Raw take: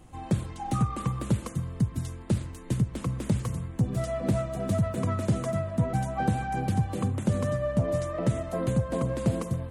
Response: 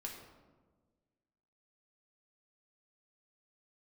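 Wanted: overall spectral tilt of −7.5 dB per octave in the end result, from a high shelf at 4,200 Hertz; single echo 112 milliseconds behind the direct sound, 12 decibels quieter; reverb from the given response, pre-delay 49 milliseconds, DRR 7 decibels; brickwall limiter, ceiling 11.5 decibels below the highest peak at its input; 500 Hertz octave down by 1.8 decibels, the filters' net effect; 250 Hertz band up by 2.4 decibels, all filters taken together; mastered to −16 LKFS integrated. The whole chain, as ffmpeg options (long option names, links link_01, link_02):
-filter_complex "[0:a]equalizer=frequency=250:width_type=o:gain=4,equalizer=frequency=500:width_type=o:gain=-3,highshelf=frequency=4200:gain=-6.5,alimiter=limit=-22dB:level=0:latency=1,aecho=1:1:112:0.251,asplit=2[link_01][link_02];[1:a]atrim=start_sample=2205,adelay=49[link_03];[link_02][link_03]afir=irnorm=-1:irlink=0,volume=-5dB[link_04];[link_01][link_04]amix=inputs=2:normalize=0,volume=14.5dB"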